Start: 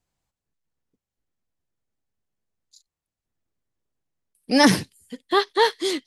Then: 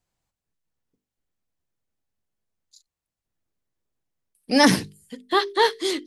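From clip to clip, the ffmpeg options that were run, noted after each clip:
-af "bandreject=f=50:t=h:w=6,bandreject=f=100:t=h:w=6,bandreject=f=150:t=h:w=6,bandreject=f=200:t=h:w=6,bandreject=f=250:t=h:w=6,bandreject=f=300:t=h:w=6,bandreject=f=350:t=h:w=6,bandreject=f=400:t=h:w=6,bandreject=f=450:t=h:w=6"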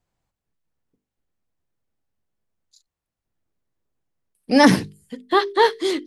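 -af "highshelf=f=2.7k:g=-8,volume=4dB"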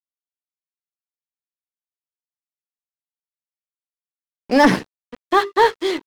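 -filter_complex "[0:a]asplit=2[a][b];[b]highpass=f=720:p=1,volume=14dB,asoftclip=type=tanh:threshold=-1dB[c];[a][c]amix=inputs=2:normalize=0,lowpass=f=1.6k:p=1,volume=-6dB,aeval=exprs='sgn(val(0))*max(abs(val(0))-0.0282,0)':c=same"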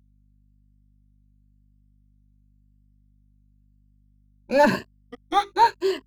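-af "afftfilt=real='re*pow(10,18/40*sin(2*PI*(1.4*log(max(b,1)*sr/1024/100)/log(2)-(0.93)*(pts-256)/sr)))':imag='im*pow(10,18/40*sin(2*PI*(1.4*log(max(b,1)*sr/1024/100)/log(2)-(0.93)*(pts-256)/sr)))':win_size=1024:overlap=0.75,aeval=exprs='val(0)+0.00316*(sin(2*PI*50*n/s)+sin(2*PI*2*50*n/s)/2+sin(2*PI*3*50*n/s)/3+sin(2*PI*4*50*n/s)/4+sin(2*PI*5*50*n/s)/5)':c=same,volume=-8.5dB"

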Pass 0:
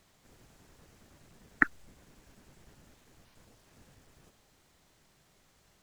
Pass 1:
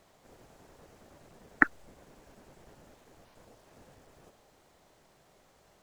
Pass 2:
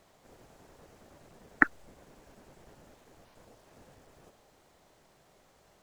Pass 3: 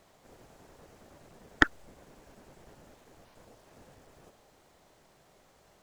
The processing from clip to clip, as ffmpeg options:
-af "equalizer=f=610:t=o:w=2:g=10,volume=-1dB"
-af anull
-af "aeval=exprs='(tanh(2.51*val(0)+0.6)-tanh(0.6))/2.51':c=same,volume=4dB"

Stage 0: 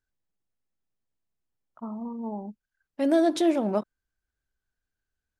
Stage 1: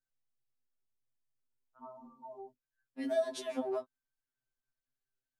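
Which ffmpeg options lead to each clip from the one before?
-filter_complex "[0:a]acrossover=split=170[a][b];[a]acompressor=threshold=-53dB:ratio=6[c];[c][b]amix=inputs=2:normalize=0,afftfilt=real='re*2.45*eq(mod(b,6),0)':imag='im*2.45*eq(mod(b,6),0)':win_size=2048:overlap=0.75,volume=-6.5dB"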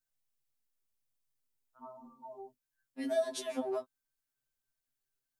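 -af "highshelf=f=5.7k:g=7.5"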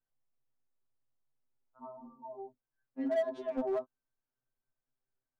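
-filter_complex "[0:a]lowpass=1.1k,asplit=2[a][b];[b]aeval=exprs='0.0251*(abs(mod(val(0)/0.0251+3,4)-2)-1)':c=same,volume=-7dB[c];[a][c]amix=inputs=2:normalize=0"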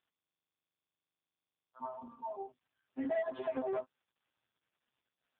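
-af "acompressor=threshold=-35dB:ratio=16,tiltshelf=f=700:g=-6.5,volume=6dB" -ar 8000 -c:a libopencore_amrnb -b:a 5150

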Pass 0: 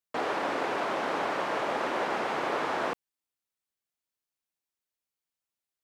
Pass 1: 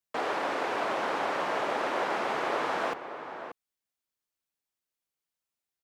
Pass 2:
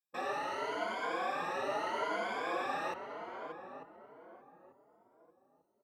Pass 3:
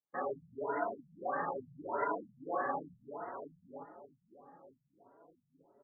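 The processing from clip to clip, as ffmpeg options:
-filter_complex "[0:a]acrossover=split=350|3100[a][b][c];[a]alimiter=level_in=15.5dB:limit=-24dB:level=0:latency=1:release=90,volume=-15.5dB[d];[d][b][c]amix=inputs=3:normalize=0,asplit=2[e][f];[f]adelay=583.1,volume=-9dB,highshelf=f=4k:g=-13.1[g];[e][g]amix=inputs=2:normalize=0"
-filter_complex "[0:a]afftfilt=real='re*pow(10,18/40*sin(2*PI*(1.8*log(max(b,1)*sr/1024/100)/log(2)-(0.78)*(pts-256)/sr)))':imag='im*pow(10,18/40*sin(2*PI*(1.8*log(max(b,1)*sr/1024/100)/log(2)-(0.78)*(pts-256)/sr)))':win_size=1024:overlap=0.75,asplit=2[a][b];[b]adelay=893,lowpass=f=810:p=1,volume=-8dB,asplit=2[c][d];[d]adelay=893,lowpass=f=810:p=1,volume=0.37,asplit=2[e][f];[f]adelay=893,lowpass=f=810:p=1,volume=0.37,asplit=2[g][h];[h]adelay=893,lowpass=f=810:p=1,volume=0.37[i];[a][c][e][g][i]amix=inputs=5:normalize=0,asplit=2[j][k];[k]adelay=4.6,afreqshift=2.9[l];[j][l]amix=inputs=2:normalize=1,volume=-7dB"
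-af "aecho=1:1:7.1:0.46,areverse,acompressor=mode=upward:threshold=-57dB:ratio=2.5,areverse,afftfilt=real='re*lt(b*sr/1024,200*pow(2100/200,0.5+0.5*sin(2*PI*1.6*pts/sr)))':imag='im*lt(b*sr/1024,200*pow(2100/200,0.5+0.5*sin(2*PI*1.6*pts/sr)))':win_size=1024:overlap=0.75,volume=1dB"

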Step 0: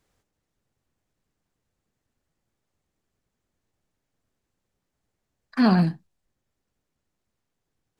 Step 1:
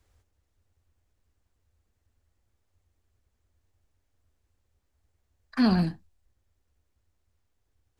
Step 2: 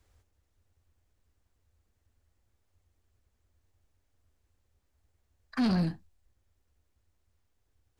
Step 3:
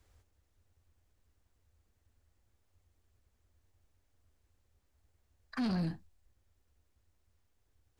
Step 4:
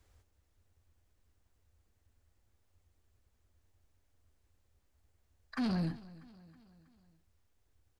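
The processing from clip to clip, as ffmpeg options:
-filter_complex "[0:a]acrossover=split=360|3000[a][b][c];[b]acompressor=threshold=-35dB:ratio=2[d];[a][d][c]amix=inputs=3:normalize=0,lowshelf=f=110:t=q:w=3:g=8.5"
-af "asoftclip=type=tanh:threshold=-22.5dB"
-af "alimiter=level_in=5dB:limit=-24dB:level=0:latency=1:release=52,volume=-5dB"
-af "aecho=1:1:321|642|963|1284:0.1|0.054|0.0292|0.0157"

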